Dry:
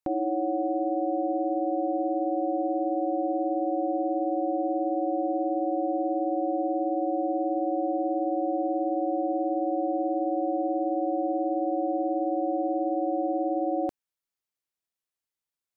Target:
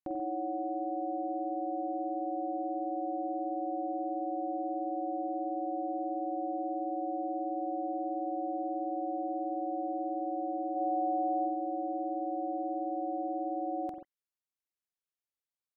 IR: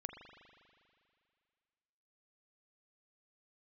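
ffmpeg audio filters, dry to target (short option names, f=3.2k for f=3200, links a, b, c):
-filter_complex "[0:a]asplit=3[a][b][c];[a]afade=t=out:st=10.75:d=0.02[d];[b]aecho=1:1:4.1:0.97,afade=t=in:st=10.75:d=0.02,afade=t=out:st=11.45:d=0.02[e];[c]afade=t=in:st=11.45:d=0.02[f];[d][e][f]amix=inputs=3:normalize=0[g];[1:a]atrim=start_sample=2205,atrim=end_sample=6174,asetrate=39690,aresample=44100[h];[g][h]afir=irnorm=-1:irlink=0,volume=-5dB"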